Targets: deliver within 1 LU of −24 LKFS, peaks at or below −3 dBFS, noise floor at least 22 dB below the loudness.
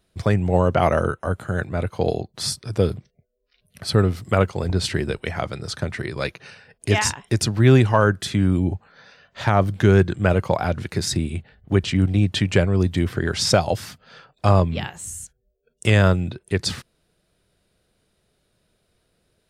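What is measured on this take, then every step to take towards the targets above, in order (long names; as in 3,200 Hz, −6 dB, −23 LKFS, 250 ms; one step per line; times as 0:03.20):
integrated loudness −21.5 LKFS; sample peak −3.0 dBFS; target loudness −24.0 LKFS
→ level −2.5 dB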